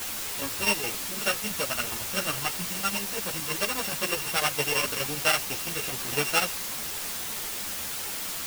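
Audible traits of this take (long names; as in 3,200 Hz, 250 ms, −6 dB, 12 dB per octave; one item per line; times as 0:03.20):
a buzz of ramps at a fixed pitch in blocks of 16 samples
chopped level 12 Hz, depth 65%, duty 65%
a quantiser's noise floor 6 bits, dither triangular
a shimmering, thickened sound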